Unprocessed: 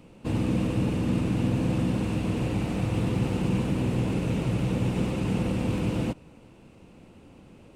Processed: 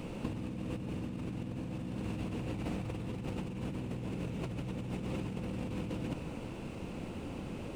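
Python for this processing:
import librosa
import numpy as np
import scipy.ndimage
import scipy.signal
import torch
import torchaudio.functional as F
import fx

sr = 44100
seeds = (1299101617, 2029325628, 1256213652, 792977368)

y = scipy.ndimage.median_filter(x, 3, mode='constant')
y = fx.over_compress(y, sr, threshold_db=-37.0, ratio=-1.0)
y = y * 10.0 ** (-1.0 / 20.0)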